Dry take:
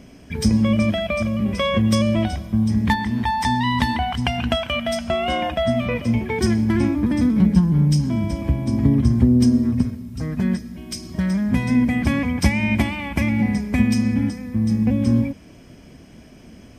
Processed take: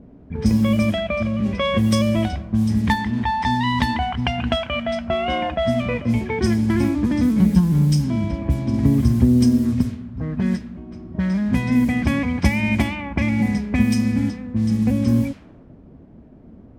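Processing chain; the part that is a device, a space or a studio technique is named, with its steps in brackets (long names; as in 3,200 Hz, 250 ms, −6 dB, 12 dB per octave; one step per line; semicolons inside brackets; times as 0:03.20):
cassette deck with a dynamic noise filter (white noise bed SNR 26 dB; low-pass that shuts in the quiet parts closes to 480 Hz, open at −13.5 dBFS)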